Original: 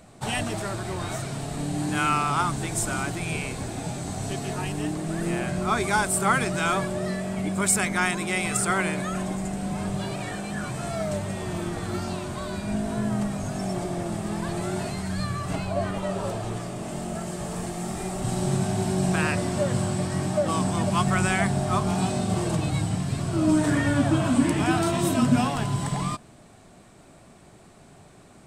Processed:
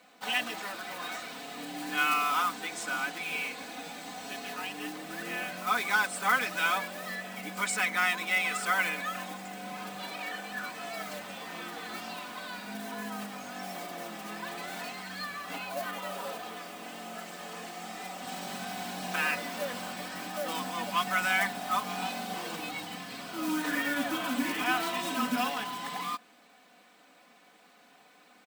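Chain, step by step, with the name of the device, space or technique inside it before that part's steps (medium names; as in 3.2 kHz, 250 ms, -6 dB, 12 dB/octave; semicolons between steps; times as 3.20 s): early digital voice recorder (band-pass 280–3500 Hz; block-companded coder 5-bit); tilt shelf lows -7 dB, about 1.1 kHz; comb 4 ms, depth 84%; trim -5.5 dB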